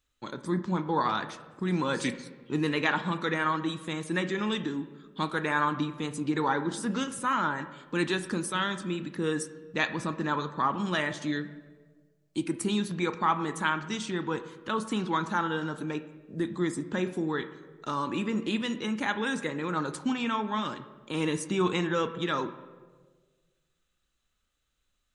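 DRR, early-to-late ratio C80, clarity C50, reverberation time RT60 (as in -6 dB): 10.0 dB, 14.0 dB, 12.5 dB, 1.5 s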